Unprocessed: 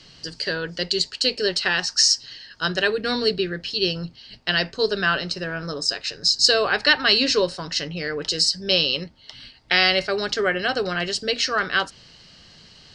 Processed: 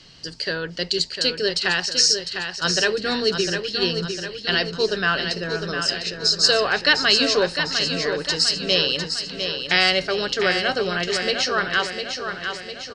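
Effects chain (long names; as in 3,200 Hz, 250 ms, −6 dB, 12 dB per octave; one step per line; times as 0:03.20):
repeating echo 703 ms, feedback 54%, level −7 dB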